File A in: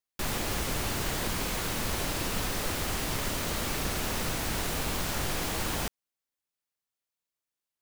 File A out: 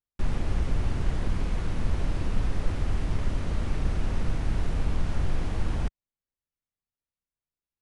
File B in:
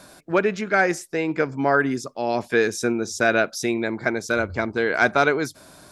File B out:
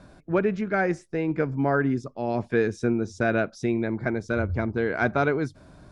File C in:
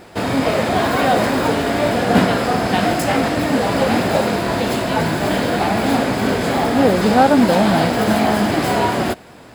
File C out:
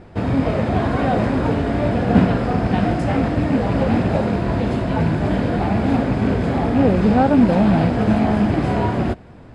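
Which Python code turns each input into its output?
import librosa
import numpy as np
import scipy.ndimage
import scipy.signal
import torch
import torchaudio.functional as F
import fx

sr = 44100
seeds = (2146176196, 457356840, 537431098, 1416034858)

y = fx.rattle_buzz(x, sr, strikes_db=-19.0, level_db=-18.0)
y = scipy.signal.sosfilt(scipy.signal.cheby1(10, 1.0, 11000.0, 'lowpass', fs=sr, output='sos'), y)
y = fx.riaa(y, sr, side='playback')
y = y * 10.0 ** (-5.5 / 20.0)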